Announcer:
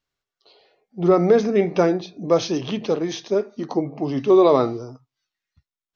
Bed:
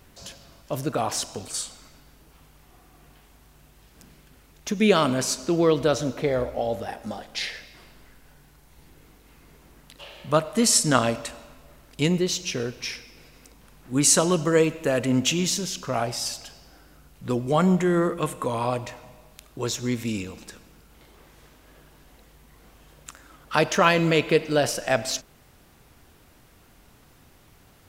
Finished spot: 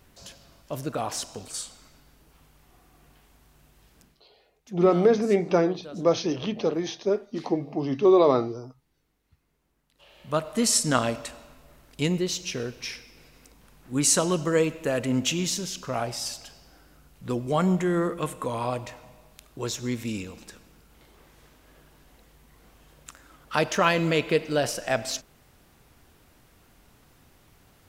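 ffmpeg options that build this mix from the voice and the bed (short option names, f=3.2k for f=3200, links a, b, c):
-filter_complex "[0:a]adelay=3750,volume=-3.5dB[a];[1:a]volume=14dB,afade=t=out:st=3.92:d=0.3:silence=0.141254,afade=t=in:st=9.91:d=0.6:silence=0.125893[b];[a][b]amix=inputs=2:normalize=0"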